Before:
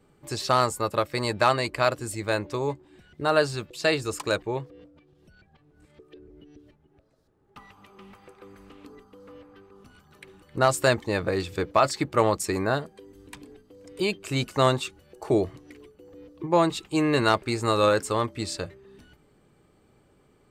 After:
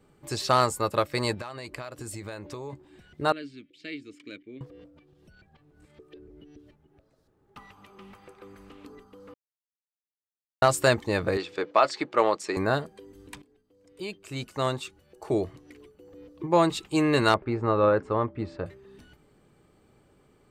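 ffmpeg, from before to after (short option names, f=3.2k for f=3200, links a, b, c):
-filter_complex "[0:a]asettb=1/sr,asplit=3[a][b][c];[a]atrim=end=1.344[d];[b]atrim=start=1.34:end=2.73,asetpts=PTS-STARTPTS,afade=t=in:d=0.004:c=qsin,afade=t=out:st=1.386:d=0.004:c=qsin,acompressor=threshold=-33dB:ratio=20:attack=3.2:release=140:knee=1:detection=peak[e];[c]atrim=start=2.726[f];[d][e]acrossfade=d=0.004:c1=hsin:c2=qsin[g];[g][f]acrossfade=d=0.004:c1=qsin:c2=hsin,asettb=1/sr,asplit=3[h][i][j];[h]atrim=end=3.324[k];[i]atrim=start=3.32:end=4.61,asetpts=PTS-STARTPTS,afade=t=in:d=0.004:c=qsin,afade=t=out:st=1.286:d=0.004:c=qsin,asplit=3[l][m][n];[l]bandpass=f=270:t=q:w=8,volume=0dB[o];[m]bandpass=f=2.29k:t=q:w=8,volume=-6dB[p];[n]bandpass=f=3.01k:t=q:w=8,volume=-9dB[q];[o][p][q]amix=inputs=3:normalize=0[r];[j]atrim=start=4.606[s];[k][r]acrossfade=d=0.004:c1=hsin:c2=qsin[t];[t][s]acrossfade=d=0.004:c1=qsin:c2=hsin,asettb=1/sr,asplit=3[u][v][w];[u]atrim=end=11.374[x];[v]atrim=start=11.37:end=12.57,asetpts=PTS-STARTPTS,afade=t=in:d=0.004:c=qsin,afade=t=out:st=1.196:d=0.004:c=qsin,highpass=330,lowpass=4.8k[y];[w]atrim=start=12.566[z];[x][y]acrossfade=d=0.004:c1=hsin:c2=qsin[aa];[aa][z]acrossfade=d=0.004:c1=qsin:c2=hsin,asettb=1/sr,asplit=3[ab][ac][ad];[ab]atrim=end=17.344[ae];[ac]atrim=start=17.34:end=18.66,asetpts=PTS-STARTPTS,afade=t=in:d=0.004:c=qsin,afade=t=out:st=1.316:d=0.004:c=qsin,lowpass=1.4k[af];[ad]atrim=start=18.656[ag];[ae][af]acrossfade=d=0.004:c1=hsin:c2=qsin[ah];[ah][ag]acrossfade=d=0.004:c1=qsin:c2=hsin,asplit=4[ai][aj][ak][al];[ai]atrim=end=9.34,asetpts=PTS-STARTPTS,afade=t=out:st=9.336:d=0.004:c=hsin[am];[aj]atrim=start=9.34:end=10.62,asetpts=PTS-STARTPTS,volume=0[an];[ak]atrim=start=10.62:end=13.42,asetpts=PTS-STARTPTS,afade=t=in:d=0.004:c=hsin,afade=t=out:st=2.796:d=0.004:c=hsin:silence=0.141254[ao];[al]atrim=start=13.42,asetpts=PTS-STARTPTS,afade=t=in:d=3.23:silence=0.141254[ap];[am][an][ao][ap]concat=n=4:v=0:a=1"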